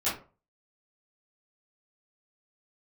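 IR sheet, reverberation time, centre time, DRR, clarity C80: 0.35 s, 35 ms, -12.5 dB, 13.0 dB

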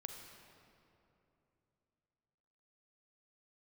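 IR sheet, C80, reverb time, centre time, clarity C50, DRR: 5.0 dB, 3.0 s, 66 ms, 4.0 dB, 3.5 dB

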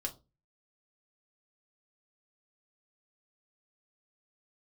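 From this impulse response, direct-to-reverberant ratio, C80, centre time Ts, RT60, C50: 2.0 dB, 23.5 dB, 8 ms, 0.30 s, 17.0 dB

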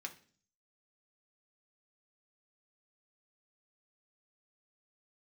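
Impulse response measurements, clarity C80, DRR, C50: 19.0 dB, 2.0 dB, 14.0 dB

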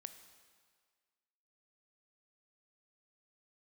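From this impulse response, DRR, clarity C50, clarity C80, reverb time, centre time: 9.0 dB, 10.5 dB, 11.5 dB, 1.8 s, 16 ms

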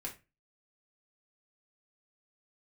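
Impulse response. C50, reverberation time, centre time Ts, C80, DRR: 12.0 dB, 0.25 s, 15 ms, 19.0 dB, -2.0 dB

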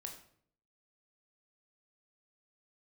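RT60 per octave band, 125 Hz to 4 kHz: 0.80, 0.75, 0.65, 0.55, 0.50, 0.45 s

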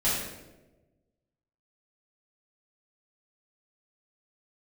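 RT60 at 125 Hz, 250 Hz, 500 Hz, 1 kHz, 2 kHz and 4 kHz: 1.6, 1.4, 1.3, 0.90, 0.80, 0.70 s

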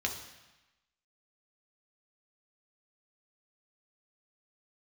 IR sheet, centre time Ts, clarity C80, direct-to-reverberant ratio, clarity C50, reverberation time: 24 ms, 10.0 dB, 1.5 dB, 7.5 dB, 1.0 s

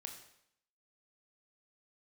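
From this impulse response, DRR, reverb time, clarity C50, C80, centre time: 3.0 dB, 0.70 s, 7.5 dB, 9.5 dB, 23 ms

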